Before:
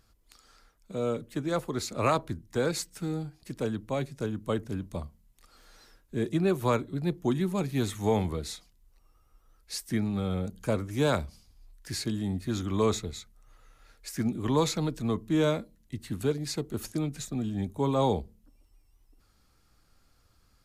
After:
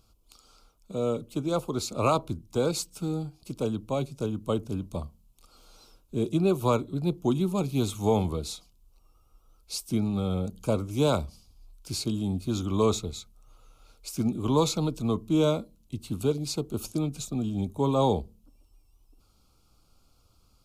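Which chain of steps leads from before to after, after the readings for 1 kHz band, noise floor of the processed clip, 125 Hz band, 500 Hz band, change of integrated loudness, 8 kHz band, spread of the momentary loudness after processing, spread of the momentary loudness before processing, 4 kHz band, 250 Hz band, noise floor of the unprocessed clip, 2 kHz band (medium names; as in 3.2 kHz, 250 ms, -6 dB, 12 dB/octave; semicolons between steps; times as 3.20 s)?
+1.5 dB, -63 dBFS, +2.0 dB, +2.0 dB, +2.0 dB, +2.0 dB, 12 LU, 12 LU, +2.0 dB, +2.0 dB, -65 dBFS, -5.0 dB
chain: Butterworth band-stop 1.8 kHz, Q 1.7; trim +2 dB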